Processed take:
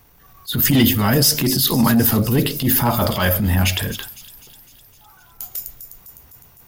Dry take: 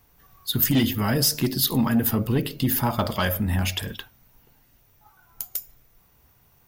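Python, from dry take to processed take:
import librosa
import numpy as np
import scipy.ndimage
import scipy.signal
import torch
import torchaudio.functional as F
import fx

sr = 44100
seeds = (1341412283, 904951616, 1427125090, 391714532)

y = fx.echo_wet_highpass(x, sr, ms=254, feedback_pct=63, hz=5300.0, wet_db=-10.5)
y = fx.transient(y, sr, attack_db=-9, sustain_db=3)
y = F.gain(torch.from_numpy(y), 7.5).numpy()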